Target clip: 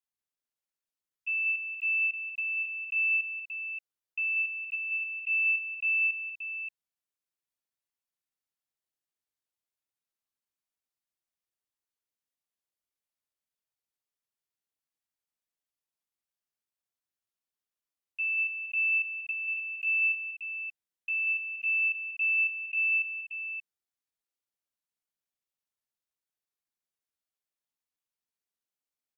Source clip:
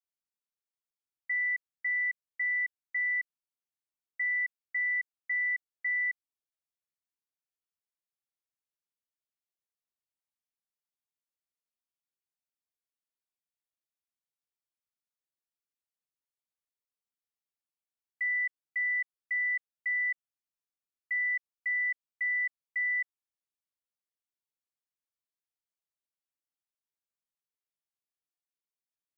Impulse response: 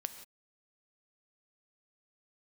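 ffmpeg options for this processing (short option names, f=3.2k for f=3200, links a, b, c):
-af "asetrate=58866,aresample=44100,atempo=0.749154,aecho=1:1:188|245|578:0.531|0.299|0.447"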